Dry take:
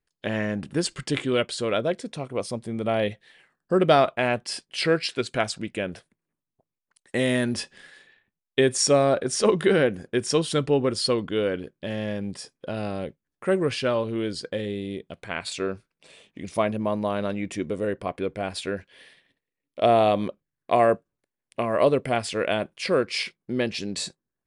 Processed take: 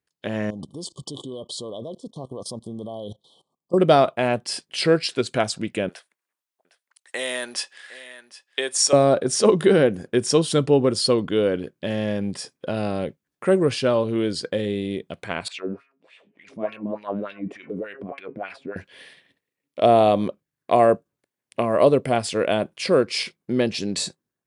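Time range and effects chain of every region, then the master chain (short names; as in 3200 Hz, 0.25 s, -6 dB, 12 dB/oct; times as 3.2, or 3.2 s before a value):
0.5–3.78 level quantiser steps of 19 dB + brick-wall FIR band-stop 1200–3000 Hz
5.89–8.93 HPF 840 Hz + echo 0.758 s -18 dB
15.48–18.76 de-hum 137.4 Hz, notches 22 + transient shaper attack -7 dB, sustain +7 dB + LFO band-pass sine 3.4 Hz 210–2600 Hz
whole clip: HPF 85 Hz; dynamic EQ 2000 Hz, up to -6 dB, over -38 dBFS, Q 0.87; AGC gain up to 5 dB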